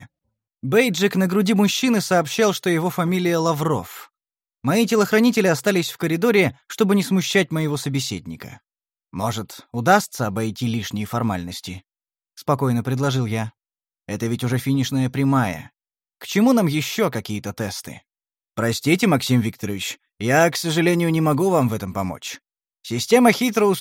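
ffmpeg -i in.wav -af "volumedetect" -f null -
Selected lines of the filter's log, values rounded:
mean_volume: -20.8 dB
max_volume: -1.4 dB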